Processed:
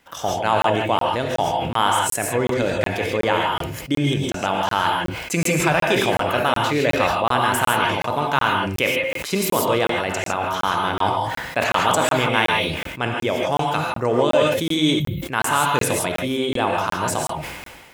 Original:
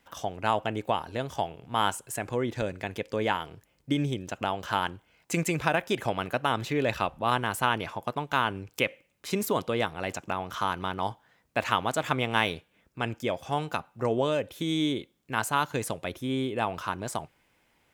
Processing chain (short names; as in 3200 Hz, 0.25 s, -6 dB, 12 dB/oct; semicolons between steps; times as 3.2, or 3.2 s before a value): in parallel at -1 dB: limiter -17.5 dBFS, peak gain reduction 10.5 dB; on the sum: low shelf 230 Hz -4.5 dB; non-linear reverb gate 0.18 s rising, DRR 0 dB; spectral gain 14.99–15.23, 200–12000 Hz -25 dB; crackling interface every 0.37 s, samples 1024, zero, from 0.62; sustainer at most 38 dB/s; gain +2 dB